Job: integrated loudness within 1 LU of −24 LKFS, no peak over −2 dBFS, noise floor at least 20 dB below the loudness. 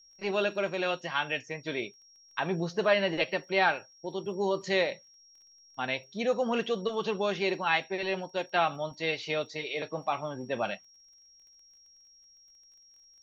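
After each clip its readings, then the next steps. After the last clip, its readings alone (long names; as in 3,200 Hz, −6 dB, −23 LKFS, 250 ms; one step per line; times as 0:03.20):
crackle rate 19 per second; interfering tone 5,600 Hz; level of the tone −56 dBFS; integrated loudness −30.5 LKFS; sample peak −12.5 dBFS; target loudness −24.0 LKFS
→ click removal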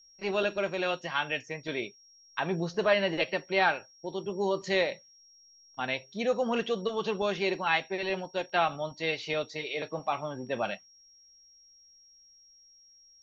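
crackle rate 0 per second; interfering tone 5,600 Hz; level of the tone −56 dBFS
→ notch filter 5,600 Hz, Q 30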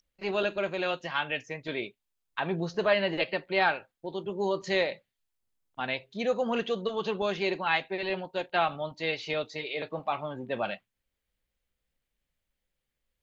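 interfering tone none found; integrated loudness −30.5 LKFS; sample peak −12.5 dBFS; target loudness −24.0 LKFS
→ level +6.5 dB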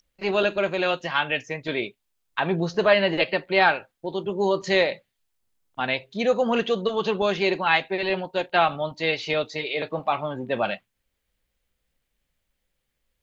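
integrated loudness −24.0 LKFS; sample peak −6.0 dBFS; background noise floor −78 dBFS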